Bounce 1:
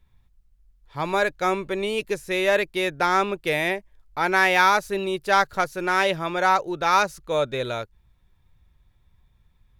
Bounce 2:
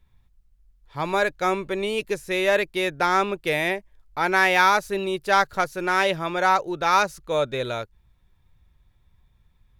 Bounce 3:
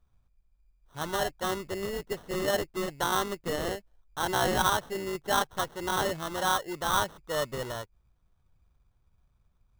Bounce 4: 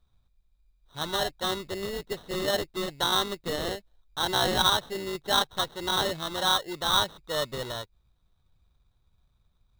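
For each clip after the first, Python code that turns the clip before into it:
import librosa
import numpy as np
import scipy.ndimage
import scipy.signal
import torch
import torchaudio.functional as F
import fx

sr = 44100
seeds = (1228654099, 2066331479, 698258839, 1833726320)

y1 = x
y2 = fx.sample_hold(y1, sr, seeds[0], rate_hz=2400.0, jitter_pct=0)
y2 = y2 * 10.0 ** (-7.5 / 20.0)
y3 = fx.peak_eq(y2, sr, hz=3800.0, db=14.5, octaves=0.26)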